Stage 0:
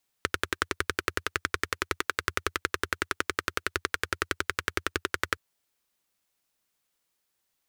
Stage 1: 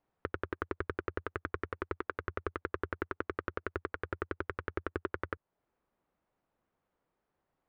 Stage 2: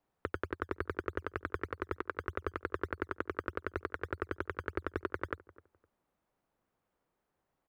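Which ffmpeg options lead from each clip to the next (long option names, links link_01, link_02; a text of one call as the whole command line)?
ffmpeg -i in.wav -af "alimiter=limit=-15dB:level=0:latency=1:release=334,lowpass=1000,volume=7.5dB" out.wav
ffmpeg -i in.wav -filter_complex "[0:a]acrossover=split=120[link_01][link_02];[link_01]acrusher=samples=19:mix=1:aa=0.000001:lfo=1:lforange=19:lforate=3.3[link_03];[link_03][link_02]amix=inputs=2:normalize=0,asplit=2[link_04][link_05];[link_05]adelay=256,lowpass=frequency=1100:poles=1,volume=-19dB,asplit=2[link_06][link_07];[link_07]adelay=256,lowpass=frequency=1100:poles=1,volume=0.27[link_08];[link_04][link_06][link_08]amix=inputs=3:normalize=0" out.wav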